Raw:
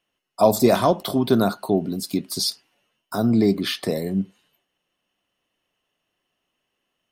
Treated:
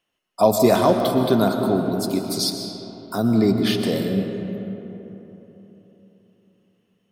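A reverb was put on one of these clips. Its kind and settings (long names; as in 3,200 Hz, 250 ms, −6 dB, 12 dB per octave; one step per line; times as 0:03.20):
comb and all-pass reverb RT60 3.7 s, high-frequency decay 0.45×, pre-delay 85 ms, DRR 4.5 dB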